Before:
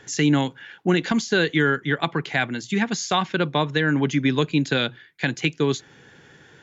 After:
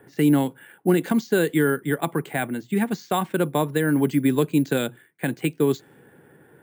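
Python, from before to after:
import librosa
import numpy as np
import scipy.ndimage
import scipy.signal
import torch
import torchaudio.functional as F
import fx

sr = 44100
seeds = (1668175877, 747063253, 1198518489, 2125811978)

y = fx.highpass(x, sr, hz=430.0, slope=6)
y = fx.tilt_shelf(y, sr, db=9.0, hz=810.0)
y = fx.env_lowpass(y, sr, base_hz=2000.0, full_db=-14.0)
y = np.repeat(y[::4], 4)[:len(y)]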